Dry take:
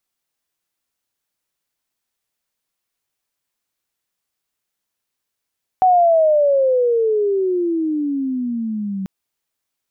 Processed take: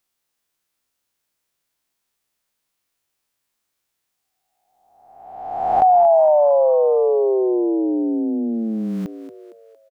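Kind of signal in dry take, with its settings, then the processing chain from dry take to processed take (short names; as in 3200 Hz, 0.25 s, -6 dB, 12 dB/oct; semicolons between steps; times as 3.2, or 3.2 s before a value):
gliding synth tone sine, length 3.24 s, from 754 Hz, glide -24 st, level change -12.5 dB, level -9 dB
spectral swells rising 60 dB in 1.23 s; on a send: frequency-shifting echo 0.229 s, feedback 48%, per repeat +86 Hz, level -12 dB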